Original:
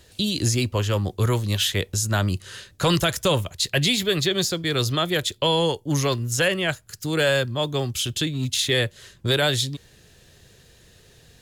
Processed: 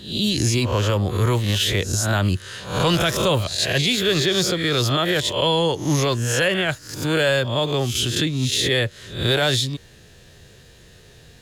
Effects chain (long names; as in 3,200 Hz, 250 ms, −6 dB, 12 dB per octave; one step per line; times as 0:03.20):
peak hold with a rise ahead of every peak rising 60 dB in 0.49 s
high-shelf EQ 6,100 Hz −5.5 dB
brickwall limiter −14.5 dBFS, peak gain reduction 7.5 dB
level +3.5 dB